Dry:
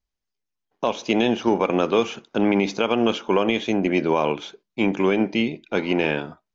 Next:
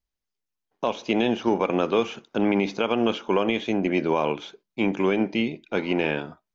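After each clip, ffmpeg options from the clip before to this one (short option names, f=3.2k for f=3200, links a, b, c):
-filter_complex "[0:a]acrossover=split=4600[a][b];[b]acompressor=threshold=-47dB:ratio=4:attack=1:release=60[c];[a][c]amix=inputs=2:normalize=0,volume=-2.5dB"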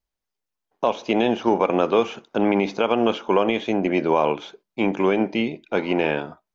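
-af "equalizer=f=740:w=0.7:g=5.5"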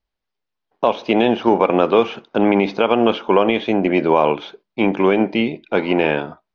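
-af "lowpass=f=4.8k:w=0.5412,lowpass=f=4.8k:w=1.3066,volume=4.5dB"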